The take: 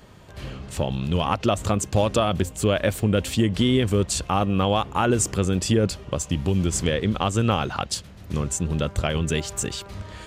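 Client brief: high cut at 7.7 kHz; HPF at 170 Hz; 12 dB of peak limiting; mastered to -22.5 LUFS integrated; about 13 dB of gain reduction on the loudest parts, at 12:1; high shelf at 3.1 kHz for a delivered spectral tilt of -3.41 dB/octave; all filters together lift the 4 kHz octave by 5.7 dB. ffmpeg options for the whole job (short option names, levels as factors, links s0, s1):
-af "highpass=170,lowpass=7700,highshelf=f=3100:g=6.5,equalizer=f=4000:t=o:g=3,acompressor=threshold=0.0355:ratio=12,volume=4.73,alimiter=limit=0.299:level=0:latency=1"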